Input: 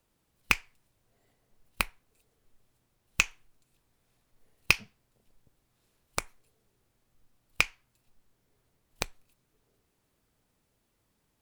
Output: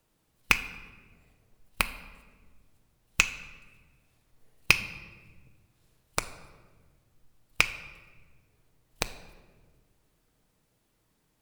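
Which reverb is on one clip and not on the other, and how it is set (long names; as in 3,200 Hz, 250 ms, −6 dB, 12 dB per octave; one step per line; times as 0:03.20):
rectangular room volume 1,200 cubic metres, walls mixed, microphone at 0.54 metres
level +2 dB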